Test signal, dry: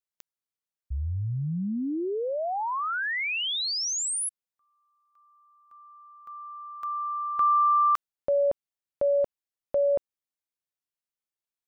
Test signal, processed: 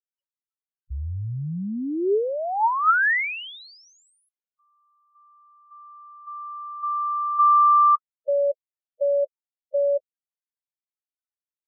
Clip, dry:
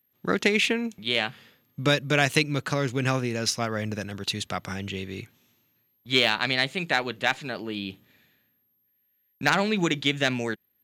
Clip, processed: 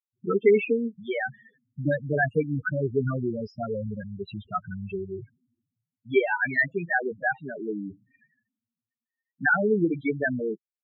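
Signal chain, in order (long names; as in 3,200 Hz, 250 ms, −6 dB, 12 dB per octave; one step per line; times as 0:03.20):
spectral peaks only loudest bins 4
low-pass with resonance 1,800 Hz, resonance Q 2.9
hollow resonant body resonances 410/900/1,300 Hz, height 10 dB, ringing for 35 ms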